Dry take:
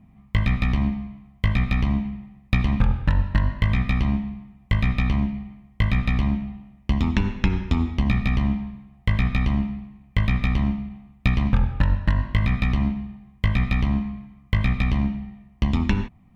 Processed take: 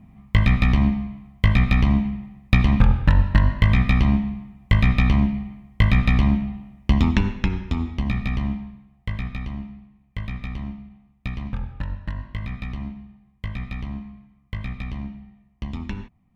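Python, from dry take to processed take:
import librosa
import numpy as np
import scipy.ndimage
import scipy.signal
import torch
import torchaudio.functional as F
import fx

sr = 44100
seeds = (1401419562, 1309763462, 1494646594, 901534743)

y = fx.gain(x, sr, db=fx.line((7.02, 4.0), (7.58, -3.0), (8.48, -3.0), (9.51, -9.5)))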